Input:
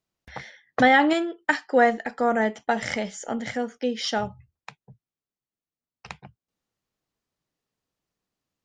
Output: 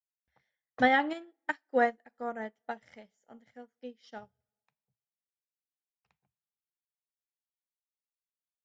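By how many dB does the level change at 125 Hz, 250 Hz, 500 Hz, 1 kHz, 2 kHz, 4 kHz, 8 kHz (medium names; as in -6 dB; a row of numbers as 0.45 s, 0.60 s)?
under -15 dB, -11.5 dB, -10.0 dB, -8.5 dB, -8.5 dB, -13.0 dB, under -25 dB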